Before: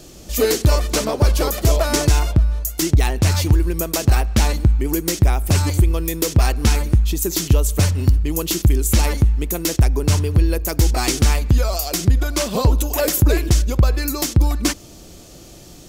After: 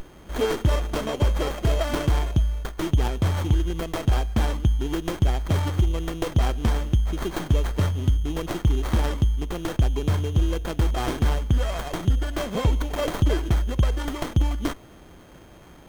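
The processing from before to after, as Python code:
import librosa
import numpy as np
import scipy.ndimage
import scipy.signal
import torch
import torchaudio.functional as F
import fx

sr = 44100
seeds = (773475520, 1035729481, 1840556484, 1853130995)

y = x + 10.0 ** (-21.0 / 20.0) * np.sin(2.0 * np.pi * 3200.0 * np.arange(len(x)) / sr)
y = fx.running_max(y, sr, window=17)
y = y * 10.0 ** (-6.0 / 20.0)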